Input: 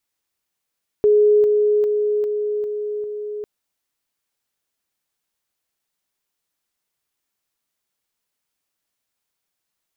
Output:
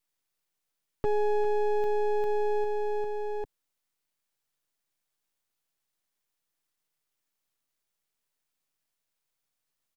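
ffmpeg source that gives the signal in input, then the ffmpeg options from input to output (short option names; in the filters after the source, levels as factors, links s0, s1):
-f lavfi -i "aevalsrc='pow(10,(-10.5-3*floor(t/0.4))/20)*sin(2*PI*419*t)':d=2.4:s=44100"
-filter_complex "[0:a]acrossover=split=210[s0][s1];[s0]aecho=1:1:6.9:0.65[s2];[s1]alimiter=limit=0.0944:level=0:latency=1[s3];[s2][s3]amix=inputs=2:normalize=0,aeval=exprs='max(val(0),0)':c=same"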